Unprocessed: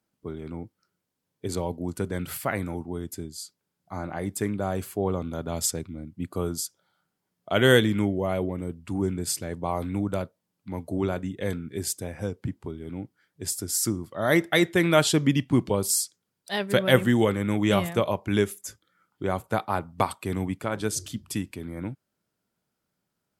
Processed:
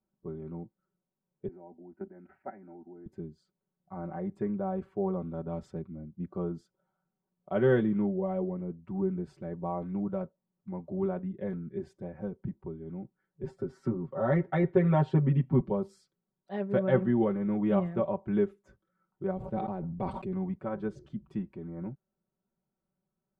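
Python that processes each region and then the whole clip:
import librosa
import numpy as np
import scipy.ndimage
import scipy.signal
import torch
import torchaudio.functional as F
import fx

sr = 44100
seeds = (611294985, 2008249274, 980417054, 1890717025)

y = fx.chain(x, sr, fx.level_steps(step_db=13),
    fx.bandpass_edges(low_hz=150.0, high_hz=2100.0),
    fx.fixed_phaser(hz=730.0, stages=8), at=(1.48, 3.06))
y = fx.chain(y, sr, fx.high_shelf(hz=3900.0, db=-7.5),
    fx.comb(ms=7.5, depth=0.93),
    fx.band_squash(depth_pct=40), at=(13.43, 15.6))
y = fx.chain(y, sr, fx.peak_eq(hz=1200.0, db=-14.0, octaves=1.5),
    fx.sustainer(db_per_s=23.0), at=(19.31, 20.33))
y = scipy.signal.sosfilt(scipy.signal.butter(2, 1000.0, 'lowpass', fs=sr, output='sos'), y)
y = fx.low_shelf(y, sr, hz=69.0, db=9.0)
y = y + 0.9 * np.pad(y, (int(5.3 * sr / 1000.0), 0))[:len(y)]
y = y * librosa.db_to_amplitude(-7.5)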